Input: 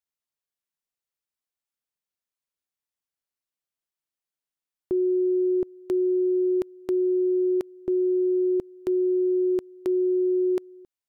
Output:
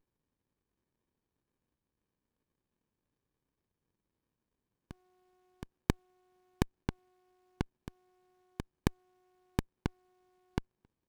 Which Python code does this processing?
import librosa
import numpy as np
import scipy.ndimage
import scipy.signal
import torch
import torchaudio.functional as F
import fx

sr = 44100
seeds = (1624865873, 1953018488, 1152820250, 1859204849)

y = scipy.signal.sosfilt(scipy.signal.cheby2(4, 80, 250.0, 'highpass', fs=sr, output='sos'), x)
y = fx.running_max(y, sr, window=65)
y = F.gain(torch.from_numpy(y), 12.5).numpy()